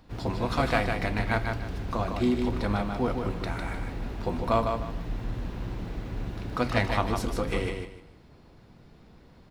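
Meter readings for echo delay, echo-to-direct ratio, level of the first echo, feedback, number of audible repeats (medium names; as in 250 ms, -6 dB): 152 ms, -4.5 dB, -5.0 dB, 27%, 3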